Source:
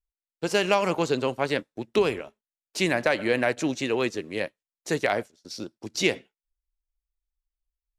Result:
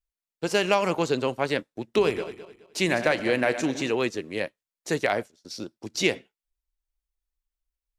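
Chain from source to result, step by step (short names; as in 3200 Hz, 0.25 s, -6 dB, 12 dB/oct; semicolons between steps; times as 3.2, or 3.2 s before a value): 1.82–3.92 regenerating reverse delay 0.106 s, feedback 53%, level -11 dB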